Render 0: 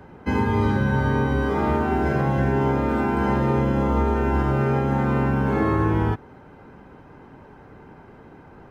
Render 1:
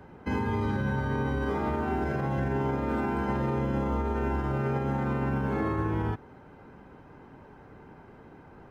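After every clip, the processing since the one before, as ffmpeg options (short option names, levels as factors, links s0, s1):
-af "alimiter=limit=0.158:level=0:latency=1:release=53,volume=0.596"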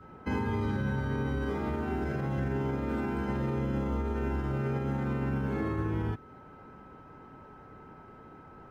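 -af "adynamicequalizer=threshold=0.00447:dfrequency=880:dqfactor=0.93:tfrequency=880:tqfactor=0.93:attack=5:release=100:ratio=0.375:range=3:mode=cutabove:tftype=bell,aeval=exprs='val(0)+0.00251*sin(2*PI*1300*n/s)':c=same,volume=0.841"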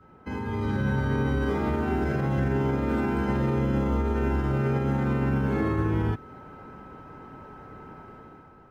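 -af "dynaudnorm=f=140:g=9:m=2.99,volume=0.668"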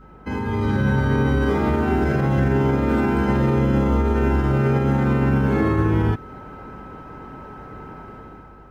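-af "aeval=exprs='val(0)+0.002*(sin(2*PI*50*n/s)+sin(2*PI*2*50*n/s)/2+sin(2*PI*3*50*n/s)/3+sin(2*PI*4*50*n/s)/4+sin(2*PI*5*50*n/s)/5)':c=same,volume=2.11"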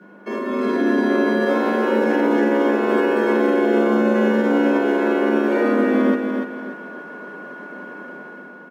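-af "aecho=1:1:290|580|870|1160:0.531|0.175|0.0578|0.0191,afreqshift=150"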